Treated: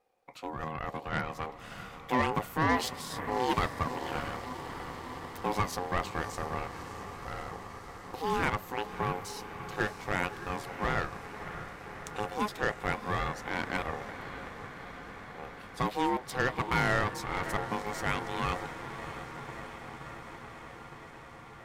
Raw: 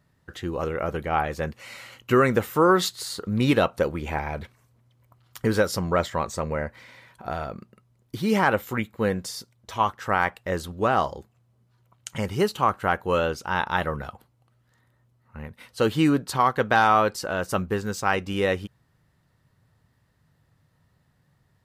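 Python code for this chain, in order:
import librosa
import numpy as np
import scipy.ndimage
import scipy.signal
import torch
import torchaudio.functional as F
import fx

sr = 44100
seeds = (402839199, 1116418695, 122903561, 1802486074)

y = fx.echo_diffused(x, sr, ms=619, feedback_pct=78, wet_db=-11)
y = fx.cheby_harmonics(y, sr, harmonics=(8,), levels_db=(-22,), full_scale_db=-6.5)
y = y * np.sin(2.0 * np.pi * 630.0 * np.arange(len(y)) / sr)
y = y * 10.0 ** (-6.5 / 20.0)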